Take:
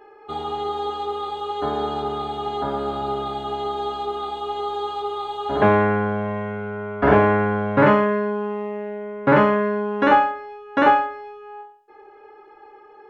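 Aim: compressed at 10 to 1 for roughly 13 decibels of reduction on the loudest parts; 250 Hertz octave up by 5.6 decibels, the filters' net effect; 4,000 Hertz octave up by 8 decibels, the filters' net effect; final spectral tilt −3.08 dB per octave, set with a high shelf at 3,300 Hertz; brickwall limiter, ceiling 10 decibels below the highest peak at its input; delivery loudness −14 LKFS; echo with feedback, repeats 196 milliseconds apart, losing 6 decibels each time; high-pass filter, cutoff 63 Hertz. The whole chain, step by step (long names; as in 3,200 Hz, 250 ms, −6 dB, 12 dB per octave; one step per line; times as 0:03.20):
high-pass filter 63 Hz
parametric band 250 Hz +7 dB
high-shelf EQ 3,300 Hz +9 dB
parametric band 4,000 Hz +4.5 dB
downward compressor 10 to 1, threshold −21 dBFS
brickwall limiter −18.5 dBFS
repeating echo 196 ms, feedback 50%, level −6 dB
level +13 dB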